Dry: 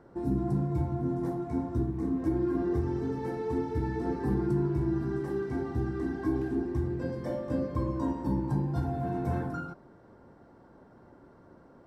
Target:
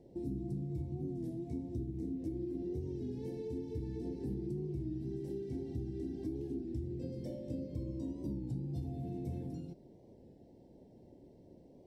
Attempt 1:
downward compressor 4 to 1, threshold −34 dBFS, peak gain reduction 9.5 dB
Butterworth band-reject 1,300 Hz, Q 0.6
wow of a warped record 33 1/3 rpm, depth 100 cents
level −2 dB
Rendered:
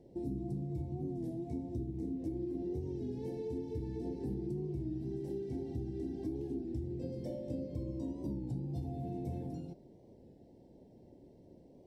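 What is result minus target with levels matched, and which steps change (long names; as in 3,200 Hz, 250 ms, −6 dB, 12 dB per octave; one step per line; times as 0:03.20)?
1,000 Hz band +5.0 dB
add after Butterworth band-reject: dynamic equaliser 760 Hz, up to −6 dB, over −56 dBFS, Q 1.2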